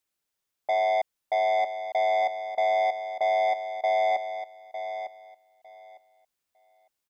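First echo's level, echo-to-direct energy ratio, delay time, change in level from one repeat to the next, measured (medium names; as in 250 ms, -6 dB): -10.0 dB, -10.0 dB, 904 ms, -15.0 dB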